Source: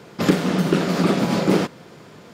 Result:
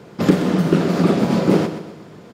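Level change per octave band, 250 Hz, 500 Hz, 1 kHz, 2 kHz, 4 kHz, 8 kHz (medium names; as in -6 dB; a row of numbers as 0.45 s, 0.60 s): +3.0 dB, +2.5 dB, +0.5 dB, -1.5 dB, -2.5 dB, -3.0 dB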